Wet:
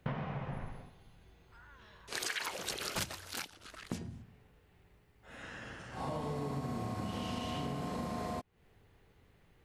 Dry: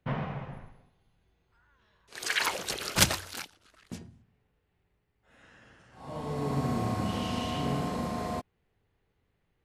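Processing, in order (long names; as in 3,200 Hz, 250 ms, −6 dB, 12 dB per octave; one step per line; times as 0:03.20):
downward compressor 12 to 1, threshold −45 dBFS, peak gain reduction 28.5 dB
level +10 dB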